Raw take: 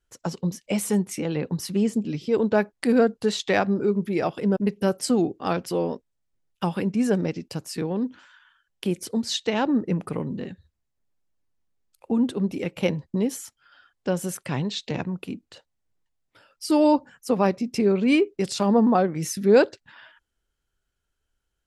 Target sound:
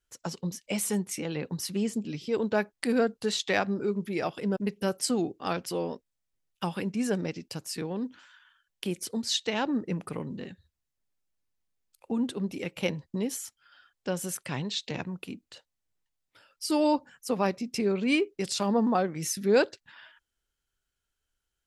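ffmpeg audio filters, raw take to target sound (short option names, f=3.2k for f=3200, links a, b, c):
-af "tiltshelf=f=1.4k:g=-3.5,volume=-3.5dB"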